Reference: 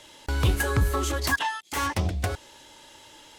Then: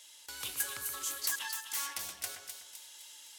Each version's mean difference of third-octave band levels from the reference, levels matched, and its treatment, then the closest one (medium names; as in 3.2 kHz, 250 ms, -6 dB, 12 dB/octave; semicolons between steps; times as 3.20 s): 10.5 dB: differentiator; gain riding within 4 dB 2 s; two-band feedback delay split 2.7 kHz, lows 124 ms, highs 256 ms, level -6.5 dB; trim -2 dB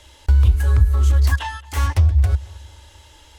6.0 dB: resonant low shelf 110 Hz +14 dB, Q 3; compression 4:1, threshold -12 dBFS, peak gain reduction 12 dB; on a send: filtered feedback delay 221 ms, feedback 44%, low-pass 3 kHz, level -21 dB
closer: second